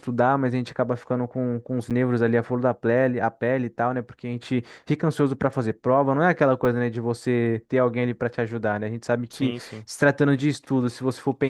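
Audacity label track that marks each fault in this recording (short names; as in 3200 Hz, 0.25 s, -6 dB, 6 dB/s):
1.900000	1.910000	gap 7.3 ms
6.650000	6.650000	gap 2.3 ms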